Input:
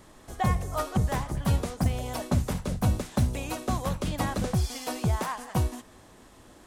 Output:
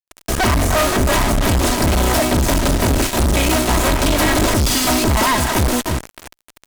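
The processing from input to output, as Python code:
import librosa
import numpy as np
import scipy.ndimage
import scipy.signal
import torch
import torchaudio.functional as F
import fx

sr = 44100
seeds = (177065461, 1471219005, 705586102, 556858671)

y = fx.lower_of_two(x, sr, delay_ms=3.1)
y = fx.echo_feedback(y, sr, ms=307, feedback_pct=29, wet_db=-17.0)
y = fx.fuzz(y, sr, gain_db=48.0, gate_db=-45.0)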